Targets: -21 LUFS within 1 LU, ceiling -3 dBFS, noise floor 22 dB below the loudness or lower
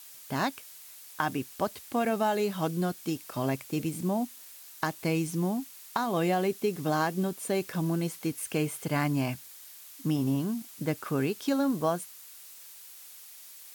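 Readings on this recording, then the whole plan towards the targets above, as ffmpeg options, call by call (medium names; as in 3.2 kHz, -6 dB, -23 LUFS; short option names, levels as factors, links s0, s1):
noise floor -49 dBFS; noise floor target -53 dBFS; loudness -30.5 LUFS; peak level -13.0 dBFS; loudness target -21.0 LUFS
-> -af "afftdn=nr=6:nf=-49"
-af "volume=2.99"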